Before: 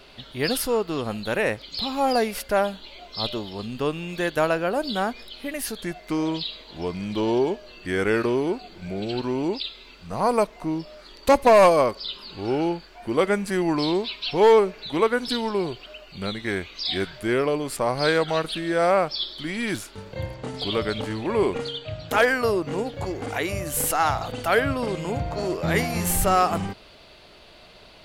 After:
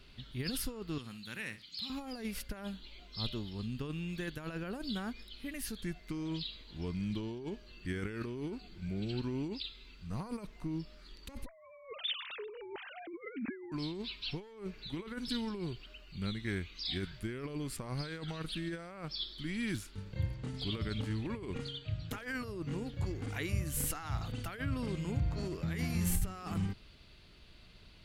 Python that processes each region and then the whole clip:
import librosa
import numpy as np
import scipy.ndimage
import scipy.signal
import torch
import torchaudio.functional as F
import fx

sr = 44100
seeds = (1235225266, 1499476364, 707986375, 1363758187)

y = fx.chain(x, sr, fx.highpass(hz=200.0, slope=12),
    fx.peak_eq(hz=490.0, db=-13.5, octaves=2.4),
    fx.room_flutter(wall_m=10.3, rt60_s=0.27), at=(0.98, 1.9))
y = fx.chain(y, sr, fx.sine_speech(),
    fx.notch(hz=1100.0, q=22.0),
    fx.env_flatten(amount_pct=50), at=(11.46, 13.72))
y = fx.high_shelf(y, sr, hz=2300.0, db=-9.0)
y = fx.over_compress(y, sr, threshold_db=-26.0, ratio=-1.0)
y = fx.tone_stack(y, sr, knobs='6-0-2')
y = F.gain(torch.from_numpy(y), 8.5).numpy()